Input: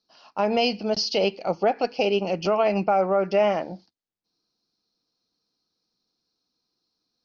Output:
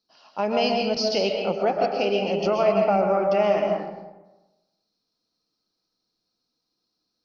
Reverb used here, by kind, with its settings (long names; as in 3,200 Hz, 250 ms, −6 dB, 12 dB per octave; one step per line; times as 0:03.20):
comb and all-pass reverb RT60 1.1 s, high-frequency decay 0.5×, pre-delay 90 ms, DRR 1.5 dB
level −2 dB